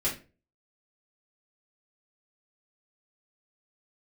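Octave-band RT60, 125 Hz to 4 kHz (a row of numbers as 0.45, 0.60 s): 0.45, 0.40, 0.40, 0.30, 0.30, 0.25 s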